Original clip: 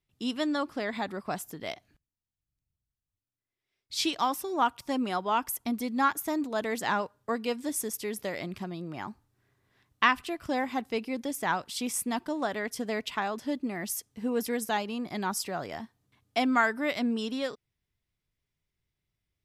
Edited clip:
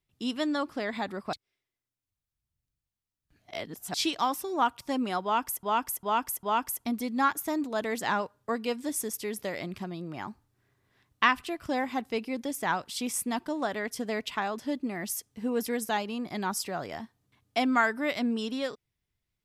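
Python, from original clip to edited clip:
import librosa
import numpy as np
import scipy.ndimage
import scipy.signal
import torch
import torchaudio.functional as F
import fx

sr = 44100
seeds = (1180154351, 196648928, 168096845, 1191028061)

y = fx.edit(x, sr, fx.reverse_span(start_s=1.33, length_s=2.61),
    fx.repeat(start_s=5.23, length_s=0.4, count=4), tone=tone)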